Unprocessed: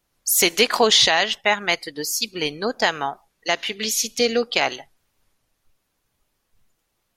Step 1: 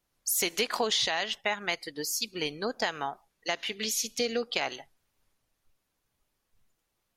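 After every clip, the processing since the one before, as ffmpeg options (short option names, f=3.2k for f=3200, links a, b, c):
-af "acompressor=threshold=-20dB:ratio=2.5,volume=-6.5dB"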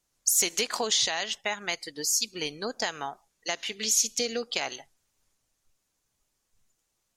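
-af "equalizer=f=7k:w=1.2:g=10.5,volume=-1.5dB"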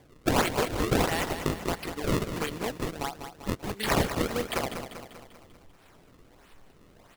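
-filter_complex "[0:a]asplit=2[a][b];[b]acompressor=mode=upward:threshold=-28dB:ratio=2.5,volume=-1dB[c];[a][c]amix=inputs=2:normalize=0,acrusher=samples=32:mix=1:aa=0.000001:lfo=1:lforange=51.2:lforate=1.5,aecho=1:1:196|392|588|784|980|1176:0.355|0.192|0.103|0.0559|0.0302|0.0163,volume=-5.5dB"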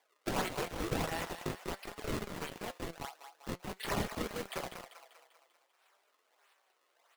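-filter_complex "[0:a]flanger=delay=0.8:depth=7.3:regen=-58:speed=1:shape=triangular,acrossover=split=540[a][b];[a]acrusher=bits=5:mix=0:aa=0.000001[c];[c][b]amix=inputs=2:normalize=0,flanger=delay=4.6:depth=1.7:regen=75:speed=0.48:shape=triangular,volume=-1.5dB"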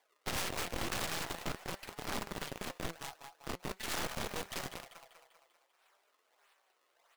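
-af "aeval=exprs='0.119*(cos(1*acos(clip(val(0)/0.119,-1,1)))-cos(1*PI/2))+0.0299*(cos(6*acos(clip(val(0)/0.119,-1,1)))-cos(6*PI/2))+0.00841*(cos(7*acos(clip(val(0)/0.119,-1,1)))-cos(7*PI/2))':c=same,aeval=exprs='0.0224*(abs(mod(val(0)/0.0224+3,4)-2)-1)':c=same,volume=5.5dB"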